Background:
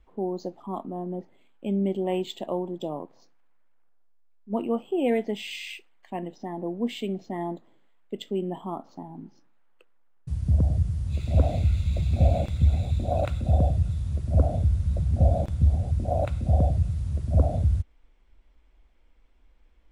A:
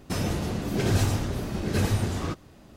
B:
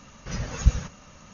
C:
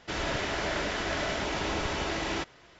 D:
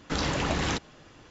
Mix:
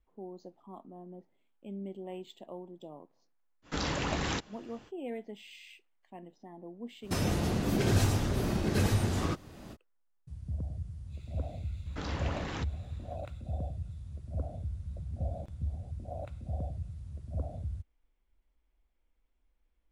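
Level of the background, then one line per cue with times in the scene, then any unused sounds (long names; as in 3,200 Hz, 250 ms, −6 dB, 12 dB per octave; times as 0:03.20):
background −15 dB
0:03.62: mix in D −4.5 dB, fades 0.05 s
0:07.01: mix in A −3 dB, fades 0.05 s + camcorder AGC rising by 16 dB per second
0:11.86: mix in D −9 dB + low-pass filter 3,100 Hz 6 dB per octave
not used: B, C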